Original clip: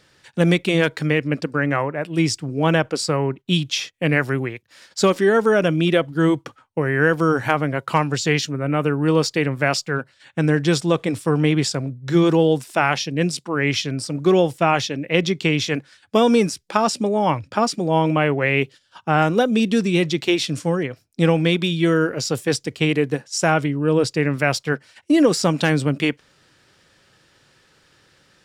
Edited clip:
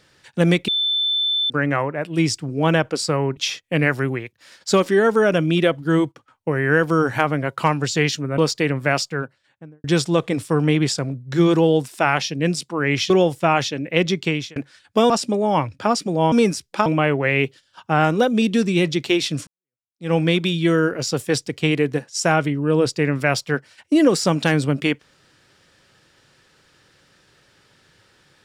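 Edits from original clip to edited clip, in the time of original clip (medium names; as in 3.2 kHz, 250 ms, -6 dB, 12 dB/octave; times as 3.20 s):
0.68–1.50 s: bleep 3.53 kHz -17.5 dBFS
3.37–3.67 s: delete
6.04–6.96 s: dip -11.5 dB, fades 0.38 s logarithmic
8.68–9.14 s: delete
9.71–10.60 s: studio fade out
13.86–14.28 s: delete
15.28–15.74 s: fade out equal-power
16.28–16.82 s: move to 18.04 s
20.65–21.32 s: fade in exponential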